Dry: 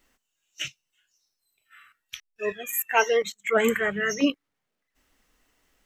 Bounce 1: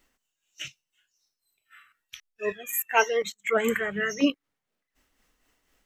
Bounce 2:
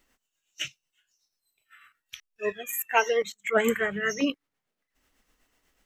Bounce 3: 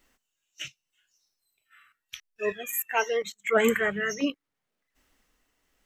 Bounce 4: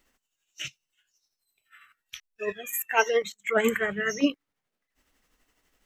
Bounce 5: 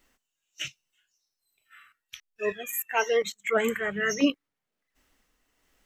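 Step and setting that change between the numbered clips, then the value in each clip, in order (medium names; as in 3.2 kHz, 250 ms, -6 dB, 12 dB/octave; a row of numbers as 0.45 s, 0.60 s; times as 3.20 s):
tremolo, rate: 4 Hz, 8.1 Hz, 0.81 Hz, 12 Hz, 1.2 Hz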